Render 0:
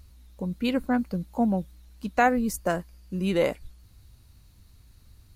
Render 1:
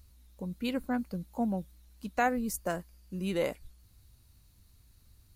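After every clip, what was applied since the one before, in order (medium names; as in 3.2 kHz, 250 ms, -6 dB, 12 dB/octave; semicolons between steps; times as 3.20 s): treble shelf 6.6 kHz +7 dB; trim -7 dB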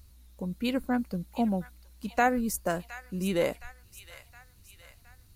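feedback echo behind a high-pass 716 ms, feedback 52%, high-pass 1.5 kHz, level -11.5 dB; trim +3.5 dB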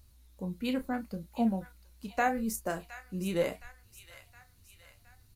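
flange 0.75 Hz, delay 8.1 ms, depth 4 ms, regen +62%; doubling 31 ms -10 dB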